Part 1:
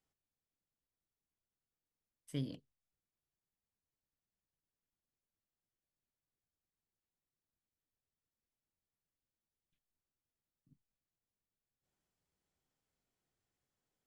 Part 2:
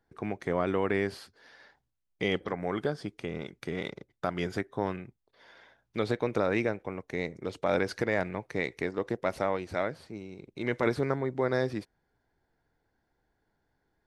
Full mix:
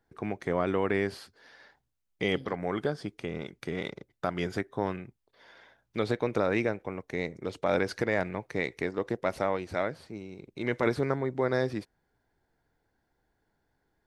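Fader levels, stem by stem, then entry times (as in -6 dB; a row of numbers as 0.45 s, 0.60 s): -8.0 dB, +0.5 dB; 0.00 s, 0.00 s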